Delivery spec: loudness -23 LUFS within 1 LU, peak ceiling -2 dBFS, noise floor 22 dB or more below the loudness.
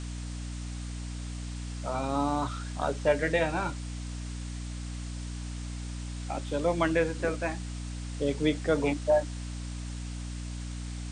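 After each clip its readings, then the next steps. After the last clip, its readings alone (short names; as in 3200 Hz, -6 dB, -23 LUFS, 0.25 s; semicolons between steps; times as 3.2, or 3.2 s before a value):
hum 60 Hz; harmonics up to 300 Hz; hum level -34 dBFS; noise floor -37 dBFS; noise floor target -54 dBFS; loudness -32.0 LUFS; peak -12.5 dBFS; loudness target -23.0 LUFS
-> de-hum 60 Hz, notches 5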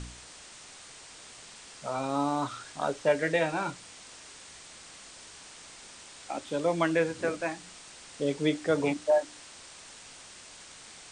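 hum none; noise floor -49 dBFS; noise floor target -52 dBFS
-> denoiser 6 dB, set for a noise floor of -49 dBFS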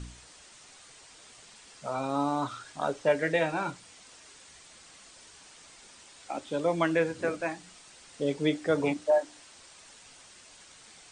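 noise floor -54 dBFS; loudness -30.0 LUFS; peak -13.5 dBFS; loudness target -23.0 LUFS
-> gain +7 dB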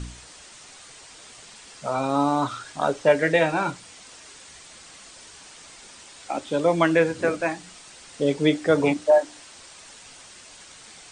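loudness -23.0 LUFS; peak -6.5 dBFS; noise floor -47 dBFS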